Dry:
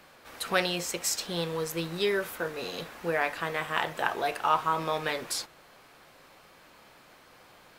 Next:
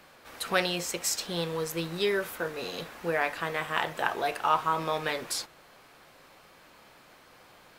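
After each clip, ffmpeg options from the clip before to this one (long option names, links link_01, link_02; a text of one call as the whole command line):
ffmpeg -i in.wav -af anull out.wav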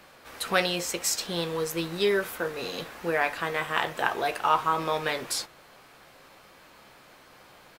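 ffmpeg -i in.wav -filter_complex "[0:a]asplit=2[link_01][link_02];[link_02]adelay=15,volume=-12dB[link_03];[link_01][link_03]amix=inputs=2:normalize=0,volume=2dB" out.wav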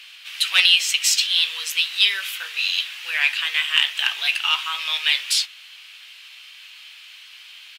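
ffmpeg -i in.wav -filter_complex "[0:a]asoftclip=type=hard:threshold=-11dB,highpass=frequency=2900:width_type=q:width=3.7,asplit=2[link_01][link_02];[link_02]highpass=frequency=720:poles=1,volume=9dB,asoftclip=type=tanh:threshold=-5.5dB[link_03];[link_01][link_03]amix=inputs=2:normalize=0,lowpass=frequency=5800:poles=1,volume=-6dB,volume=5dB" out.wav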